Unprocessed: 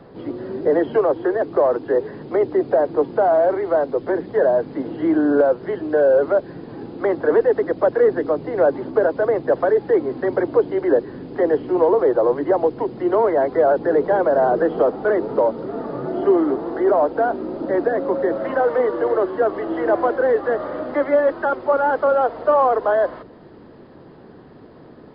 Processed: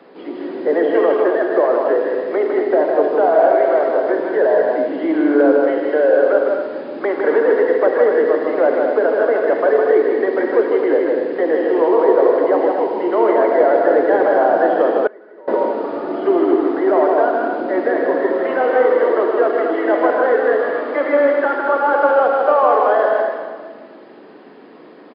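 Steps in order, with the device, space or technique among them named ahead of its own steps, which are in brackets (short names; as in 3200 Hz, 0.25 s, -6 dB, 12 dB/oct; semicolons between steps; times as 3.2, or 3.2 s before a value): stadium PA (HPF 250 Hz 24 dB/oct; bell 2400 Hz +7 dB 0.93 oct; loudspeakers at several distances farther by 54 m -4 dB, 81 m -7 dB; reverb RT60 1.7 s, pre-delay 32 ms, DRR 4.5 dB); 15.07–15.48 gate -7 dBFS, range -25 dB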